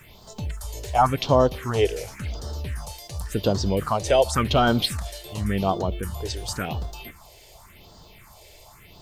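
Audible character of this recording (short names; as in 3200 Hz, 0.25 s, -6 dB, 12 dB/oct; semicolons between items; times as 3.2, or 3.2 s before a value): a quantiser's noise floor 12-bit, dither triangular; phasing stages 4, 0.91 Hz, lowest notch 190–2300 Hz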